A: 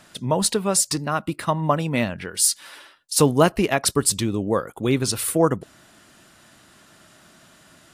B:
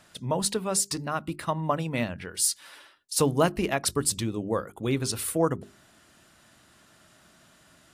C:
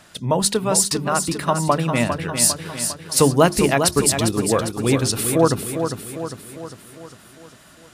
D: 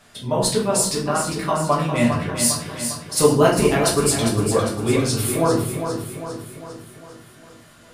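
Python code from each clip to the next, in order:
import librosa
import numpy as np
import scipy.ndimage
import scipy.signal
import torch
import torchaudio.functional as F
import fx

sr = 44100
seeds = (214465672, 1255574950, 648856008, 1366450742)

y1 = fx.peak_eq(x, sr, hz=66.0, db=5.0, octaves=1.2)
y1 = fx.hum_notches(y1, sr, base_hz=50, count=8)
y1 = y1 * librosa.db_to_amplitude(-6.0)
y2 = fx.echo_feedback(y1, sr, ms=402, feedback_pct=53, wet_db=-7.5)
y2 = y2 * librosa.db_to_amplitude(8.0)
y3 = fx.room_shoebox(y2, sr, seeds[0], volume_m3=66.0, walls='mixed', distance_m=1.2)
y3 = y3 * librosa.db_to_amplitude(-7.0)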